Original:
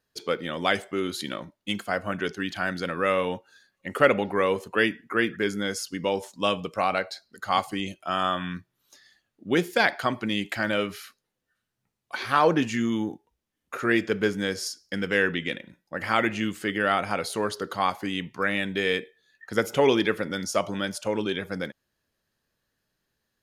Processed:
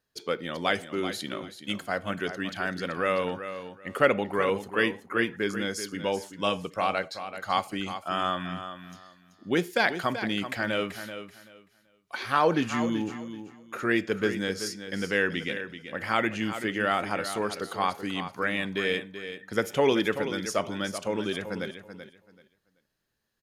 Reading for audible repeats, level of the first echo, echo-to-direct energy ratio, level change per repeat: 2, -10.5 dB, -10.5 dB, -13.5 dB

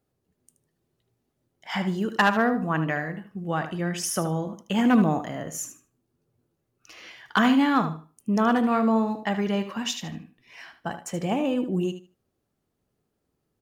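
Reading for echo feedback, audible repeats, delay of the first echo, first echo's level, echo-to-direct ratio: 19%, 2, 76 ms, -11.0 dB, -11.0 dB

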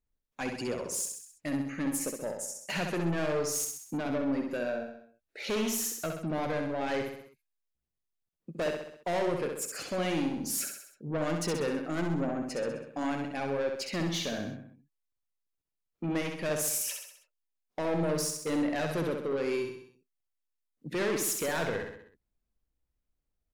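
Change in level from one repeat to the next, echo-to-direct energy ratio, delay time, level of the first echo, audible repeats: -5.5 dB, -3.5 dB, 65 ms, -5.0 dB, 5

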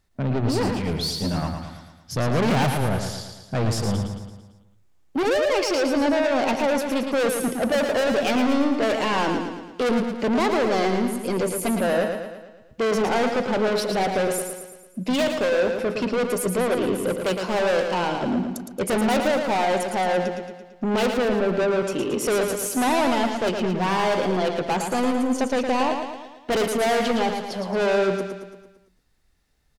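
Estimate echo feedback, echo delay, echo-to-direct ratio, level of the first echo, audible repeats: 53%, 112 ms, -4.5 dB, -6.0 dB, 6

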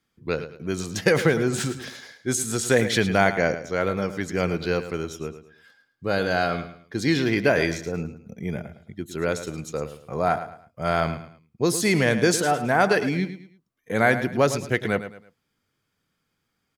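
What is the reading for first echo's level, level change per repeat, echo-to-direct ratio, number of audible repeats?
-12.0 dB, -10.0 dB, -11.5 dB, 3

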